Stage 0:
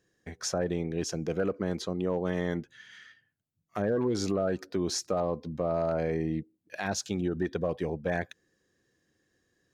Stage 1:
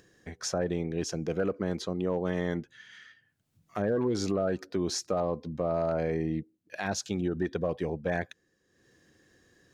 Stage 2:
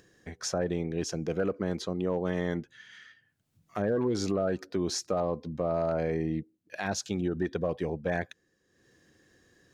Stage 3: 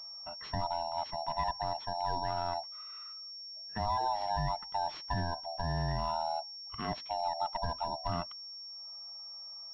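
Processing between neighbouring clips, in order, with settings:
high-shelf EQ 11,000 Hz −5 dB; upward compression, threshold −52 dBFS
no processing that can be heard
neighbouring bands swapped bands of 500 Hz; switching amplifier with a slow clock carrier 5,500 Hz; level −4 dB

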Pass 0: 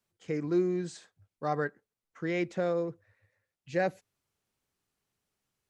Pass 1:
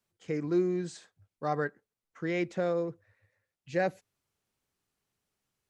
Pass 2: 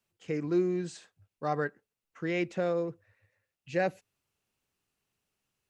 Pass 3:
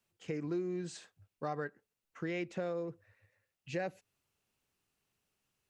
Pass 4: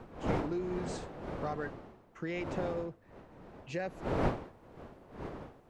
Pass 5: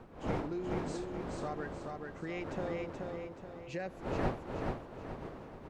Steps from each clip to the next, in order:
no processing that can be heard
parametric band 2,700 Hz +7 dB 0.21 octaves
downward compressor 3 to 1, threshold −36 dBFS, peak gain reduction 10 dB
wind on the microphone 590 Hz −40 dBFS
repeating echo 428 ms, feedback 42%, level −3.5 dB; level −3 dB

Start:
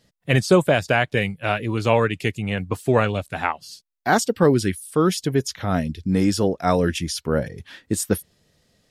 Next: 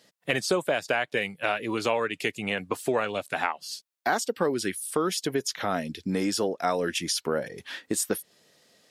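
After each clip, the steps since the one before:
Bessel high-pass filter 370 Hz, order 2
downward compressor 3 to 1, threshold −30 dBFS, peak gain reduction 13 dB
level +4.5 dB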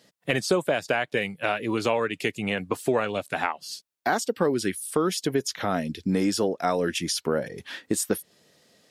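low-shelf EQ 370 Hz +5.5 dB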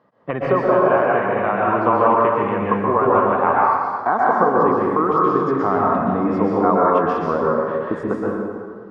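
low-pass with resonance 1,100 Hz, resonance Q 5
dense smooth reverb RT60 1.9 s, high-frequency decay 0.6×, pre-delay 110 ms, DRR −5 dB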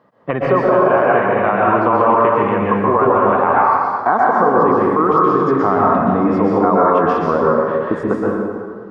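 brickwall limiter −8 dBFS, peak gain reduction 5.5 dB
level +4.5 dB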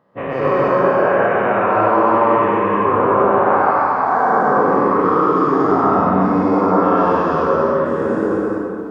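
every bin's largest magnitude spread in time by 240 ms
reverb whose tail is shaped and stops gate 390 ms flat, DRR −1.5 dB
level −10.5 dB

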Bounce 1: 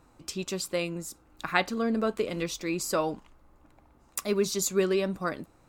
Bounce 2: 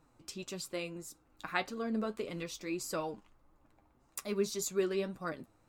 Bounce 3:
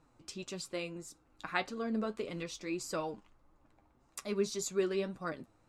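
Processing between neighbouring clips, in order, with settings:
flanger 1.7 Hz, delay 6.1 ms, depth 4.2 ms, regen +50%; level −4 dB
low-pass filter 8,900 Hz 12 dB per octave

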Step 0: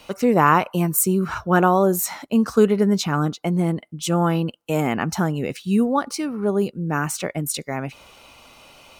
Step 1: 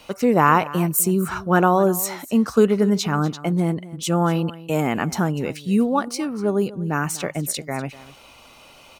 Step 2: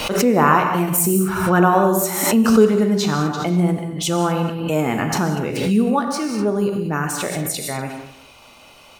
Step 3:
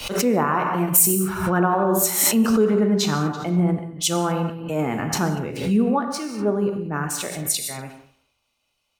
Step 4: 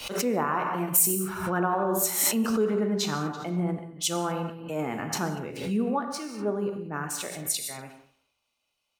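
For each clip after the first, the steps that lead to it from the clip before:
single-tap delay 246 ms −18 dB
reverb whose tail is shaped and stops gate 230 ms flat, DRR 3.5 dB; background raised ahead of every attack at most 49 dB per second
brickwall limiter −10 dBFS, peak gain reduction 8.5 dB; multiband upward and downward expander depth 100%; level −1.5 dB
low-shelf EQ 160 Hz −7.5 dB; level −5.5 dB

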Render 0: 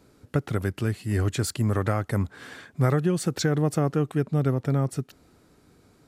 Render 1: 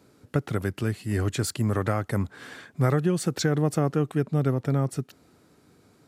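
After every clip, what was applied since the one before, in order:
high-pass filter 88 Hz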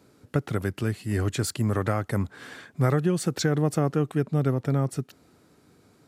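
no processing that can be heard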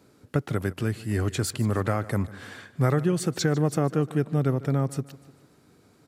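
repeating echo 150 ms, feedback 46%, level −18.5 dB

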